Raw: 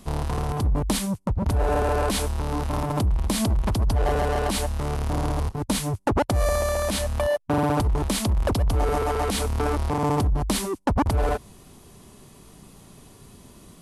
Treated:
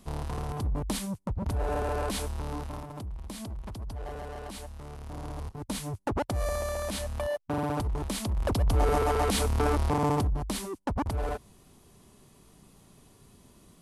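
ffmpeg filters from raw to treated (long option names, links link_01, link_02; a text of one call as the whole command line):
ffmpeg -i in.wav -af "volume=7dB,afade=type=out:start_time=2.48:duration=0.4:silence=0.375837,afade=type=in:start_time=5.01:duration=1.01:silence=0.398107,afade=type=in:start_time=8.29:duration=0.52:silence=0.473151,afade=type=out:start_time=9.91:duration=0.55:silence=0.446684" out.wav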